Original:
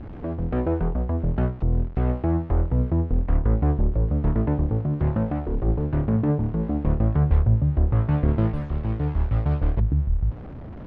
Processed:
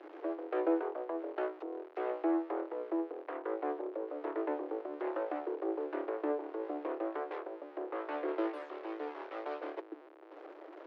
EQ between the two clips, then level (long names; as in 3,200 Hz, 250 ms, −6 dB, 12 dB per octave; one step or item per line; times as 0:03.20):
Chebyshev high-pass filter 310 Hz, order 8
−3.5 dB